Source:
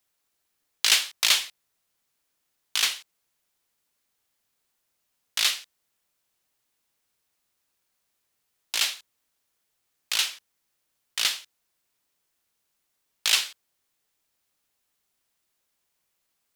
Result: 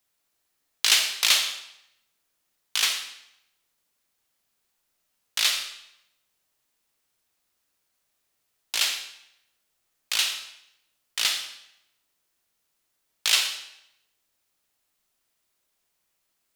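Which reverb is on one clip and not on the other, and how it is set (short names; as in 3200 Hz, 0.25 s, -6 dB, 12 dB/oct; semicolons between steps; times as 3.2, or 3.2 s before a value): digital reverb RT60 0.79 s, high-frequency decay 0.95×, pre-delay 5 ms, DRR 5 dB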